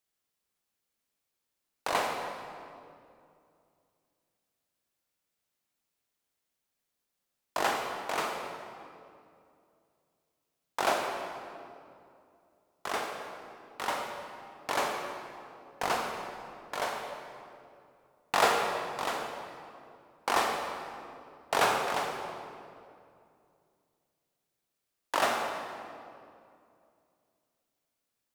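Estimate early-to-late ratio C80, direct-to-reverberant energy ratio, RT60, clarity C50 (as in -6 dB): 4.0 dB, 1.5 dB, 2.5 s, 3.0 dB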